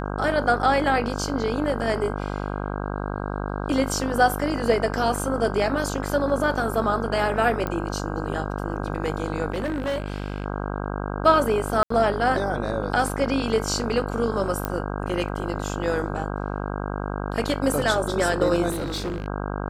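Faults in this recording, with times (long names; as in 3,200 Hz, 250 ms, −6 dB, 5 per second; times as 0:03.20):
mains buzz 50 Hz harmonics 32 −29 dBFS
0:07.67: click −14 dBFS
0:09.52–0:10.46: clipping −22.5 dBFS
0:11.83–0:11.90: drop-out 74 ms
0:14.65: click −10 dBFS
0:18.70–0:19.28: clipping −24.5 dBFS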